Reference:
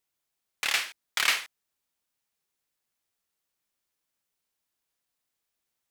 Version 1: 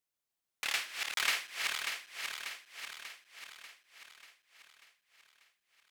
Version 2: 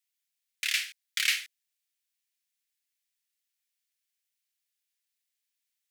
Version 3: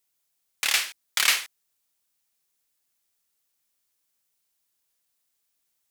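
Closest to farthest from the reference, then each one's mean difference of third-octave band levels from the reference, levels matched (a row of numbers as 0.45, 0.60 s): 1, 3, 2; 1.0, 3.0, 9.5 dB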